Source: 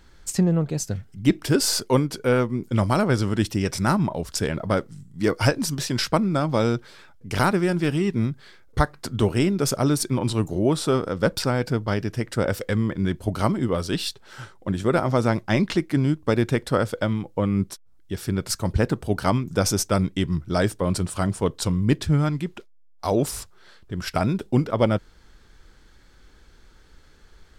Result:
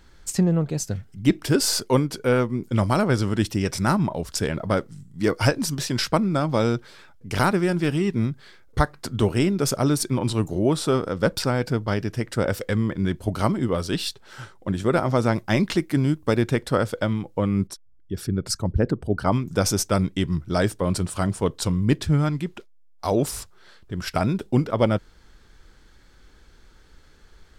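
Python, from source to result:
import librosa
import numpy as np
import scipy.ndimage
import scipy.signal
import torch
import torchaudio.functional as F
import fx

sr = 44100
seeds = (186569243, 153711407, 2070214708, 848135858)

y = fx.high_shelf(x, sr, hz=10000.0, db=9.5, at=(15.36, 16.36))
y = fx.envelope_sharpen(y, sr, power=1.5, at=(17.67, 19.32))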